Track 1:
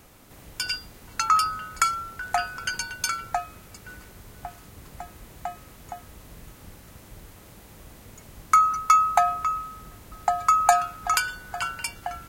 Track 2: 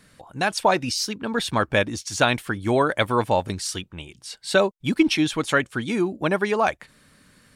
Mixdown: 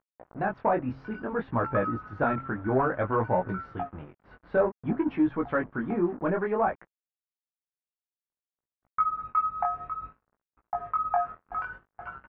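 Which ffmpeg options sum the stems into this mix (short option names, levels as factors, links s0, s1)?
-filter_complex "[0:a]adelay=450,volume=0.562,asplit=3[s0][s1][s2];[s0]atrim=end=6.06,asetpts=PTS-STARTPTS,afade=t=out:st=6.056:d=0.004:c=hsin[s3];[s1]atrim=start=6.06:end=8.13,asetpts=PTS-STARTPTS,volume=0[s4];[s2]atrim=start=8.13,asetpts=PTS-STARTPTS,afade=t=in:d=0.004:c=hsin[s5];[s3][s4][s5]concat=n=3:v=0:a=1[s6];[1:a]bandreject=f=133.5:t=h:w=4,bandreject=f=267:t=h:w=4,acompressor=mode=upward:threshold=0.00316:ratio=2.5,asoftclip=type=tanh:threshold=0.188,volume=1.06[s7];[s6][s7]amix=inputs=2:normalize=0,acrusher=bits=5:mix=0:aa=0.5,flanger=delay=16:depth=7.6:speed=0.57,lowpass=f=1500:w=0.5412,lowpass=f=1500:w=1.3066"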